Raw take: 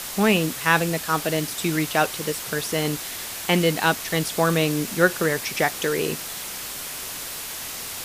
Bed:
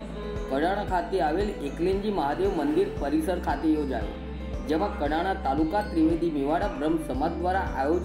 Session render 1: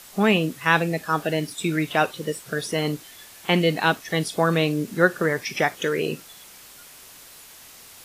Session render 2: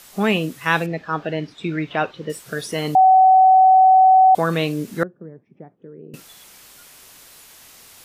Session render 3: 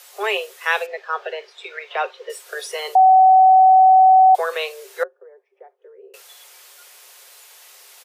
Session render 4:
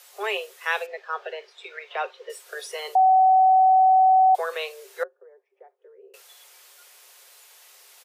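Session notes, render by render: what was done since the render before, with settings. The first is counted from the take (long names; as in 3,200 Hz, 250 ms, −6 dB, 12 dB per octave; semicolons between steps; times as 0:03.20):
noise reduction from a noise print 13 dB
0:00.86–0:02.30: high-frequency loss of the air 210 metres; 0:02.95–0:04.35: beep over 755 Hz −8 dBFS; 0:05.03–0:06.14: four-pole ladder band-pass 210 Hz, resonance 20%
Chebyshev high-pass filter 390 Hz, order 10; comb filter 5.6 ms, depth 36%
level −5.5 dB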